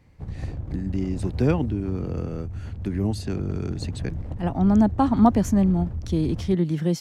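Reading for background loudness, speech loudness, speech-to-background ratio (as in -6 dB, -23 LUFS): -34.0 LUFS, -24.0 LUFS, 10.0 dB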